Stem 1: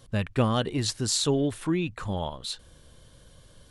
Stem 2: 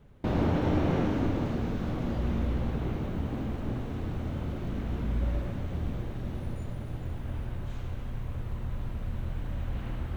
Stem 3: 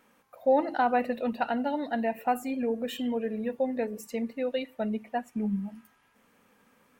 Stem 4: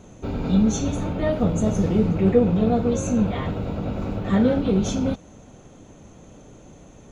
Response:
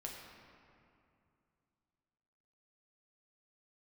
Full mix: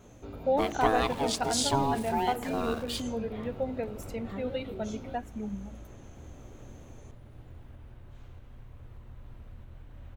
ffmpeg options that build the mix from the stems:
-filter_complex "[0:a]aeval=exprs='val(0)*sin(2*PI*550*n/s)':c=same,aeval=exprs='val(0)*gte(abs(val(0)),0.00708)':c=same,adelay=450,volume=-1dB,asplit=2[a][b];[b]volume=-11dB[c];[1:a]alimiter=level_in=2.5dB:limit=-24dB:level=0:latency=1:release=363,volume=-2.5dB,adelay=450,volume=-11dB[d];[2:a]bandreject=f=1.8k:w=12,volume=-3.5dB[e];[3:a]acompressor=threshold=-39dB:ratio=2,flanger=delay=17:depth=4.7:speed=0.38,volume=-3.5dB[f];[4:a]atrim=start_sample=2205[g];[c][g]afir=irnorm=-1:irlink=0[h];[a][d][e][f][h]amix=inputs=5:normalize=0,equalizer=f=180:t=o:w=0.52:g=-6"

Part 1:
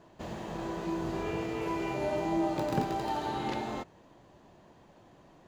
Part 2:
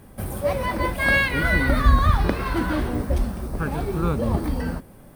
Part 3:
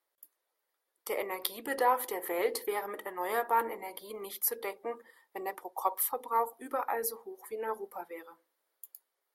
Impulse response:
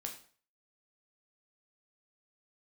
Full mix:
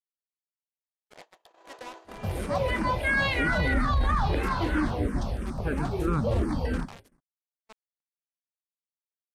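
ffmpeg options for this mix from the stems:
-filter_complex "[0:a]highpass=f=490:w=0.5412,highpass=f=490:w=1.3066,adelay=950,volume=-5.5dB[a];[1:a]asplit=2[b][c];[c]afreqshift=-3[d];[b][d]amix=inputs=2:normalize=1,adelay=2050,volume=1dB[e];[2:a]acrossover=split=160[f][g];[g]acompressor=threshold=-31dB:ratio=8[h];[f][h]amix=inputs=2:normalize=0,acrusher=bits=4:mix=0:aa=0.000001,volume=-11dB[i];[a][e][i]amix=inputs=3:normalize=0,lowpass=7.5k,agate=range=-48dB:threshold=-44dB:ratio=16:detection=peak,alimiter=limit=-17dB:level=0:latency=1:release=11"

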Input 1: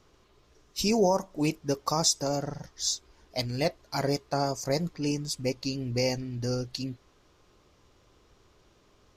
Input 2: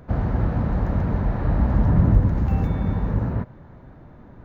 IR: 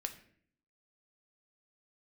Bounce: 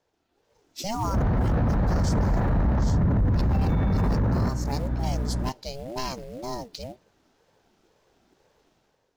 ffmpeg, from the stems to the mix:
-filter_complex "[0:a]acrusher=bits=5:mode=log:mix=0:aa=0.000001,aeval=exprs='val(0)*sin(2*PI*400*n/s+400*0.3/2*sin(2*PI*2*n/s))':c=same,volume=-11.5dB,asplit=2[a][b];[b]volume=-15dB[c];[1:a]asoftclip=type=tanh:threshold=-11.5dB,aeval=exprs='val(0)+0.0141*(sin(2*PI*60*n/s)+sin(2*PI*2*60*n/s)/2+sin(2*PI*3*60*n/s)/3+sin(2*PI*4*60*n/s)/4+sin(2*PI*5*60*n/s)/5)':c=same,adelay=1050,volume=1dB[d];[2:a]atrim=start_sample=2205[e];[c][e]afir=irnorm=-1:irlink=0[f];[a][d][f]amix=inputs=3:normalize=0,dynaudnorm=f=130:g=7:m=10dB,alimiter=limit=-17dB:level=0:latency=1:release=12"

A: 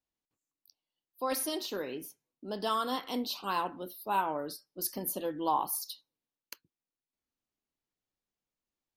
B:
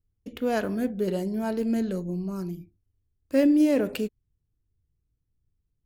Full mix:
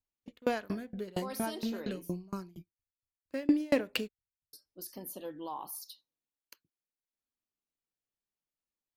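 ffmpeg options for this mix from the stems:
-filter_complex "[0:a]alimiter=level_in=0.5dB:limit=-24dB:level=0:latency=1:release=49,volume=-0.5dB,volume=-7dB,asplit=3[a][b][c];[a]atrim=end=2.28,asetpts=PTS-STARTPTS,afade=t=out:st=2.276:d=0.004:c=hsin[d];[b]atrim=start=2.28:end=4.53,asetpts=PTS-STARTPTS,volume=0[e];[c]atrim=start=4.53,asetpts=PTS-STARTPTS,afade=t=in:d=0.004:c=hsin[f];[d][e][f]concat=n=3:v=0:a=1[g];[1:a]agate=range=-18dB:threshold=-38dB:ratio=16:detection=peak,equalizer=f=1k:t=o:w=1:g=5,equalizer=f=2k:t=o:w=1:g=6,equalizer=f=4k:t=o:w=1:g=7,aeval=exprs='val(0)*pow(10,-30*if(lt(mod(4.3*n/s,1),2*abs(4.3)/1000),1-mod(4.3*n/s,1)/(2*abs(4.3)/1000),(mod(4.3*n/s,1)-2*abs(4.3)/1000)/(1-2*abs(4.3)/1000))/20)':c=same,volume=-1dB[h];[g][h]amix=inputs=2:normalize=0"

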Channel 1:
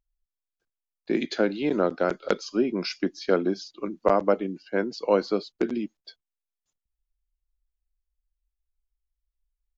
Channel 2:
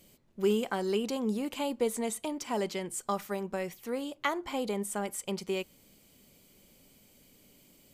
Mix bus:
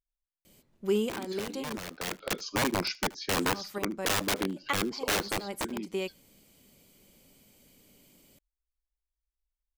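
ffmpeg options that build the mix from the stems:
-filter_complex "[0:a]equalizer=f=61:w=2.3:g=6.5,aeval=exprs='(mod(10*val(0)+1,2)-1)/10':c=same,volume=-1dB,afade=t=in:st=1.88:d=0.52:silence=0.281838,afade=t=out:st=5.1:d=0.77:silence=0.398107,asplit=3[a][b][c];[b]volume=-23.5dB[d];[1:a]adelay=450,volume=0dB,asplit=3[e][f][g];[e]atrim=end=1.78,asetpts=PTS-STARTPTS,afade=t=out:st=1.776:d=0.004:c=hsin[h];[f]atrim=start=1.78:end=3.33,asetpts=PTS-STARTPTS,volume=0[i];[g]atrim=start=3.33,asetpts=PTS-STARTPTS,afade=t=in:d=0.004:c=hsin[j];[h][i][j]concat=n=3:v=0:a=1[k];[c]apad=whole_len=369835[l];[k][l]sidechaincompress=threshold=-45dB:ratio=10:attack=6.6:release=104[m];[d]aecho=0:1:76:1[n];[a][m][n]amix=inputs=3:normalize=0"

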